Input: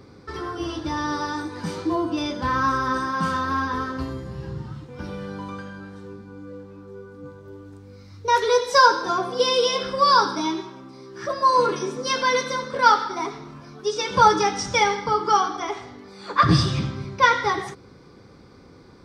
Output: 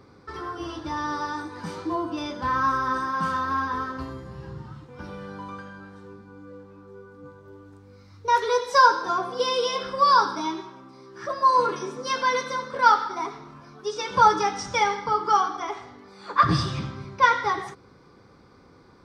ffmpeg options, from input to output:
ffmpeg -i in.wav -af "equalizer=frequency=1100:width=0.94:gain=5.5,volume=-6dB" out.wav

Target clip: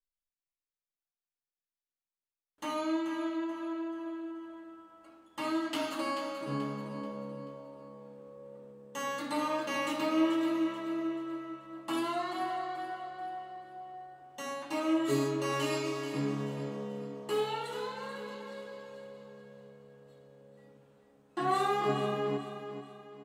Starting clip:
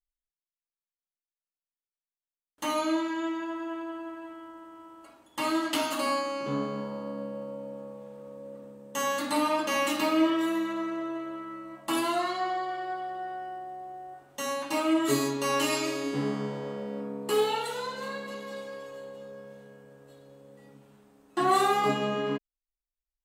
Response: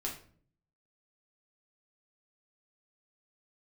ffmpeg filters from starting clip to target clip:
-filter_complex "[0:a]highshelf=frequency=6500:gain=-8,aecho=1:1:434|868|1302|1736:0.316|0.126|0.0506|0.0202,adynamicequalizer=threshold=0.002:dfrequency=140:dqfactor=5.8:tfrequency=140:tqfactor=5.8:attack=5:release=100:ratio=0.375:range=2:mode=boostabove:tftype=bell,asplit=2[link_01][link_02];[1:a]atrim=start_sample=2205[link_03];[link_02][link_03]afir=irnorm=-1:irlink=0,volume=-8dB[link_04];[link_01][link_04]amix=inputs=2:normalize=0,volume=-8dB"

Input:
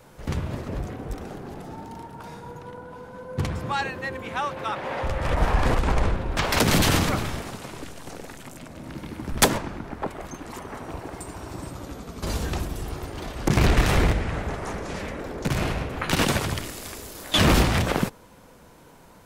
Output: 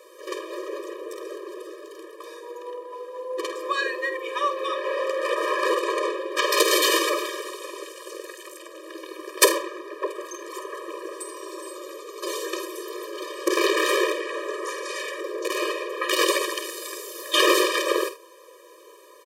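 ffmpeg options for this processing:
ffmpeg -i in.wav -filter_complex "[0:a]asettb=1/sr,asplit=3[link_01][link_02][link_03];[link_01]atrim=end=14.684[link_04];[link_02]atrim=start=14.68:end=15.21,asetpts=PTS-STARTPTS,afade=type=in:duration=0.004:curve=qsin,afade=type=out:start_time=0.526:duration=0.004:curve=qsin,tiltshelf=frequency=1100:gain=-5.5[link_05];[link_03]atrim=start=15.206[link_06];[link_04][link_05]acrossfade=duration=0.004:curve1=hsin:curve2=qsin[link_07];[link_07][link_06]acrossfade=duration=0.004:curve1=qsin:curve2=hsin,aecho=1:1:49|79:0.299|0.133,afftfilt=real='re*eq(mod(floor(b*sr/1024/320),2),1)':imag='im*eq(mod(floor(b*sr/1024/320),2),1)':win_size=1024:overlap=0.75,volume=5.5dB" out.wav

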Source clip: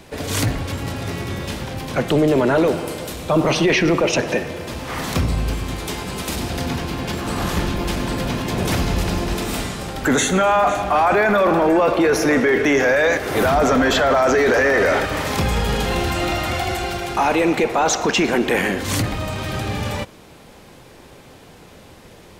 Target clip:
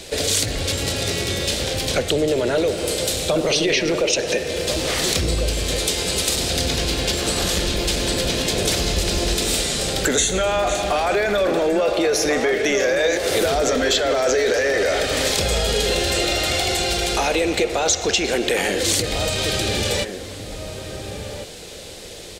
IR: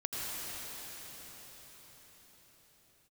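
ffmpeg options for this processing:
-filter_complex "[0:a]equalizer=frequency=125:width_type=o:width=1:gain=-6,equalizer=frequency=250:width_type=o:width=1:gain=-6,equalizer=frequency=500:width_type=o:width=1:gain=6,equalizer=frequency=1000:width_type=o:width=1:gain=-10,equalizer=frequency=4000:width_type=o:width=1:gain=8,equalizer=frequency=8000:width_type=o:width=1:gain=9,acompressor=threshold=-24dB:ratio=4,asplit=2[link_01][link_02];[link_02]adelay=1399,volume=-7dB,highshelf=frequency=4000:gain=-31.5[link_03];[link_01][link_03]amix=inputs=2:normalize=0,volume=5.5dB"

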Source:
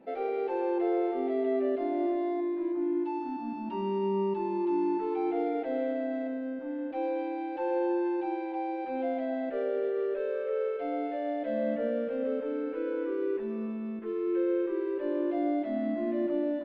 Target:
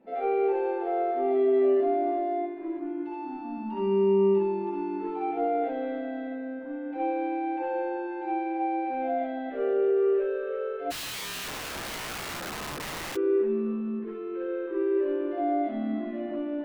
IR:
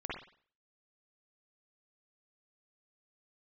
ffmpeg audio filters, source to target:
-filter_complex "[1:a]atrim=start_sample=2205,afade=type=out:start_time=0.16:duration=0.01,atrim=end_sample=7497[link_01];[0:a][link_01]afir=irnorm=-1:irlink=0,asplit=3[link_02][link_03][link_04];[link_02]afade=type=out:start_time=10.9:duration=0.02[link_05];[link_03]aeval=exprs='(mod(35.5*val(0)+1,2)-1)/35.5':channel_layout=same,afade=type=in:start_time=10.9:duration=0.02,afade=type=out:start_time=13.15:duration=0.02[link_06];[link_04]afade=type=in:start_time=13.15:duration=0.02[link_07];[link_05][link_06][link_07]amix=inputs=3:normalize=0"

